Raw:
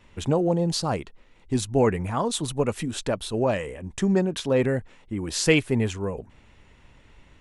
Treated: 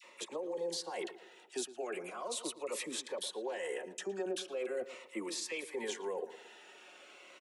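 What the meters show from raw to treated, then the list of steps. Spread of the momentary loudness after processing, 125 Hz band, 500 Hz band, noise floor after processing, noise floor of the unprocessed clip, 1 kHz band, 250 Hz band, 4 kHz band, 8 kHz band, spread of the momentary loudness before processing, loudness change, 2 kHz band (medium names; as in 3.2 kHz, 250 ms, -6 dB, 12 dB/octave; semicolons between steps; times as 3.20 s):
16 LU, under -35 dB, -13.0 dB, -59 dBFS, -55 dBFS, -14.5 dB, -20.0 dB, -10.0 dB, -9.0 dB, 11 LU, -14.5 dB, -12.5 dB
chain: high-pass 410 Hz 24 dB/octave; comb 5.5 ms, depth 35%; reverse; compression 6:1, threshold -37 dBFS, peak gain reduction 19 dB; reverse; peak limiter -35 dBFS, peak gain reduction 10 dB; phase dispersion lows, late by 44 ms, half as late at 1.1 kHz; on a send: filtered feedback delay 113 ms, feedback 45%, low-pass 2.4 kHz, level -14 dB; on the sum: Shepard-style phaser falling 0.39 Hz; trim +6 dB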